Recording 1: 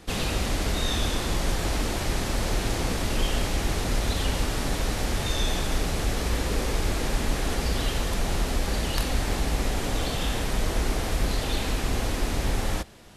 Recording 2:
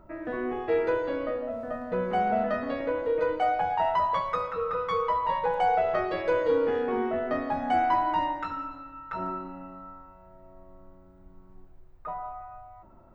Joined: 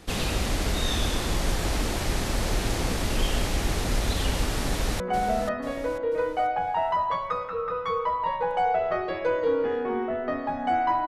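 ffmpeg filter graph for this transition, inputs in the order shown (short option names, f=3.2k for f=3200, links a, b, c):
-filter_complex "[0:a]apad=whole_dur=11.07,atrim=end=11.07,atrim=end=5.002[a];[1:a]atrim=start=2.028:end=8.1[b];[a][b]acrossfade=d=0.004:c1=hsin:c2=hsin,asplit=2[c][d];[d]afade=t=in:st=4.64:d=0.01,afade=t=out:st=5:d=0.01,aecho=0:1:490|980|1470|1960:0.375837|0.150335|0.060134|0.0240536[e];[c][e]amix=inputs=2:normalize=0"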